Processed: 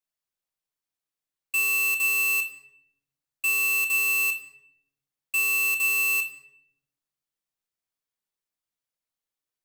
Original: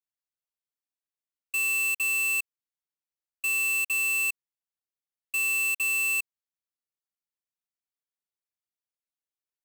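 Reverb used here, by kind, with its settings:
rectangular room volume 190 cubic metres, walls mixed, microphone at 0.58 metres
level +2.5 dB

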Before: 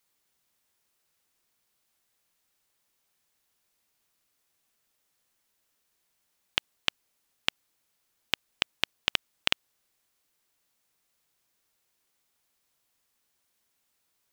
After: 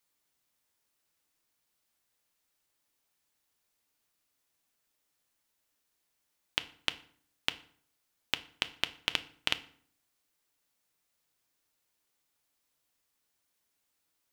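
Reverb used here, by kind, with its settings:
feedback delay network reverb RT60 0.55 s, low-frequency decay 1.25×, high-frequency decay 0.75×, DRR 10.5 dB
level −4 dB

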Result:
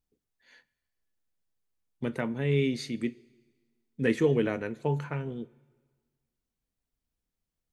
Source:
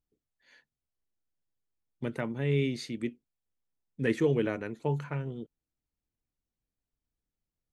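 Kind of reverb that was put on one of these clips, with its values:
coupled-rooms reverb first 0.21 s, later 1.5 s, from −18 dB, DRR 12.5 dB
level +2 dB

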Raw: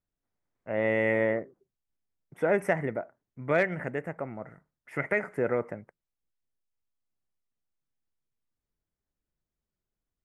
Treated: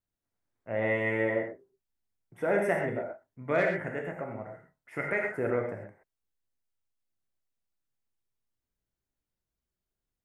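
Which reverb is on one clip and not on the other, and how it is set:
reverb whose tail is shaped and stops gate 150 ms flat, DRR 0.5 dB
level −3.5 dB

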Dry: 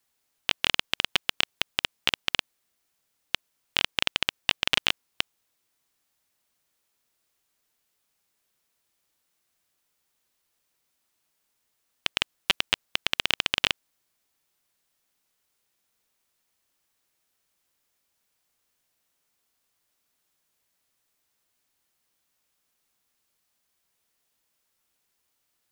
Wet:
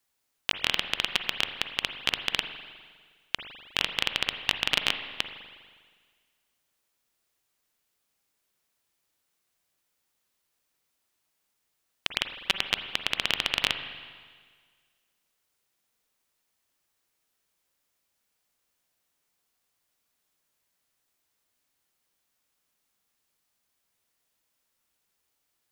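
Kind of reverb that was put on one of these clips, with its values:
spring reverb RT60 1.7 s, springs 40/51 ms, chirp 45 ms, DRR 7.5 dB
level −2 dB

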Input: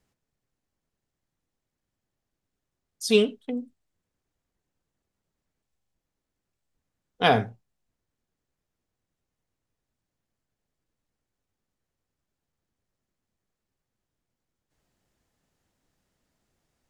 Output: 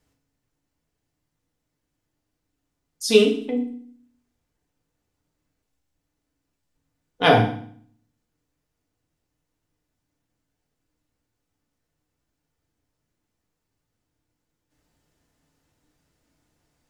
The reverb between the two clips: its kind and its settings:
feedback delay network reverb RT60 0.55 s, low-frequency decay 1.4×, high-frequency decay 0.95×, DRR 0.5 dB
level +2 dB

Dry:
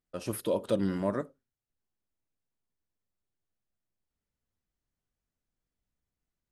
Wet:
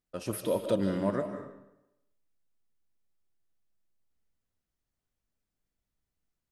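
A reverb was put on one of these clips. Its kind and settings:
comb and all-pass reverb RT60 0.86 s, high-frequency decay 0.85×, pre-delay 110 ms, DRR 7 dB

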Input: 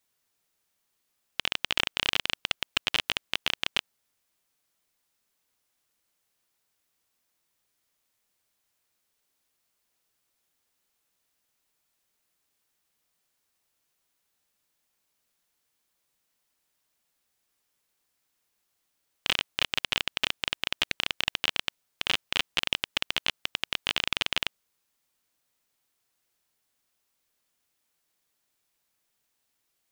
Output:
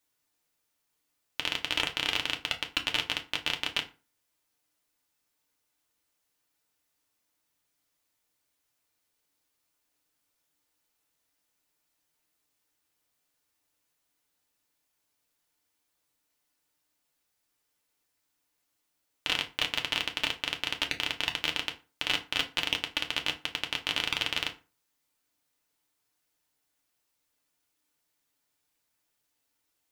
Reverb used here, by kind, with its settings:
feedback delay network reverb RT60 0.33 s, low-frequency decay 1.1×, high-frequency decay 0.7×, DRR 2.5 dB
level −3 dB

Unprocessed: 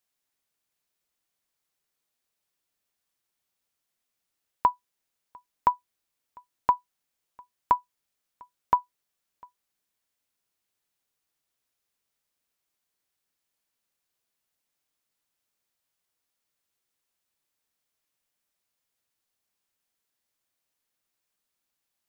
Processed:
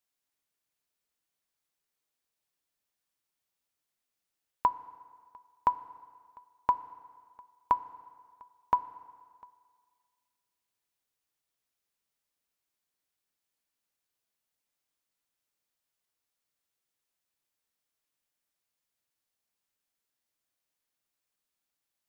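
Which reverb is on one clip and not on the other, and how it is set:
feedback delay network reverb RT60 1.9 s, low-frequency decay 0.85×, high-frequency decay 0.8×, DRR 15 dB
level −4 dB

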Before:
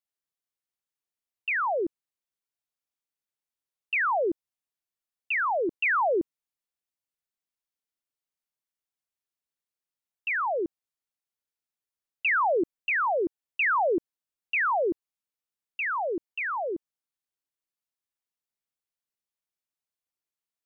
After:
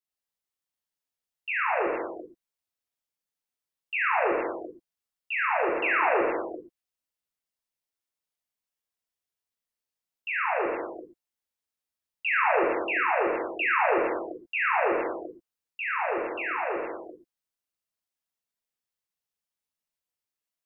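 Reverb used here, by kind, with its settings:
reverb whose tail is shaped and stops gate 490 ms falling, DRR −5.5 dB
level −5.5 dB

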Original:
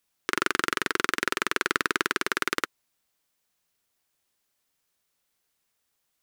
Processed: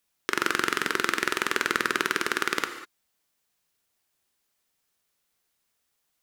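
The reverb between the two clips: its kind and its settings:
reverb whose tail is shaped and stops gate 220 ms flat, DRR 8 dB

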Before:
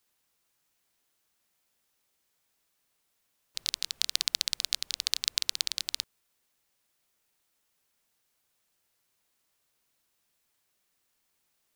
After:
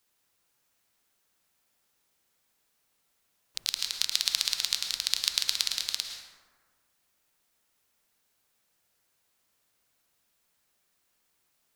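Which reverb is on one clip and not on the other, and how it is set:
dense smooth reverb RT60 1.6 s, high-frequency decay 0.4×, pre-delay 95 ms, DRR 3 dB
level +1 dB

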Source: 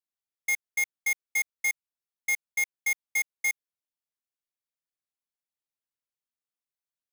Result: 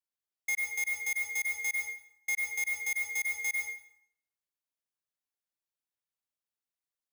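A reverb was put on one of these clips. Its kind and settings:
dense smooth reverb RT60 0.7 s, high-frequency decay 0.8×, pre-delay 85 ms, DRR 0.5 dB
level −5 dB

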